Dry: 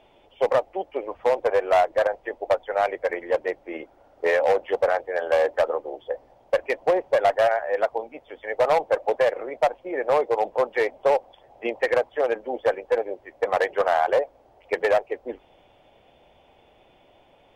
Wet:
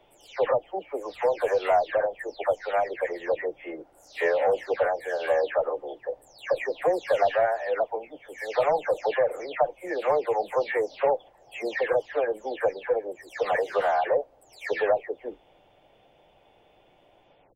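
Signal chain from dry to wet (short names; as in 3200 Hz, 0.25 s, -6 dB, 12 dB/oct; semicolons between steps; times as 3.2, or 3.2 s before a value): spectral delay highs early, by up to 0.312 s; gain -2.5 dB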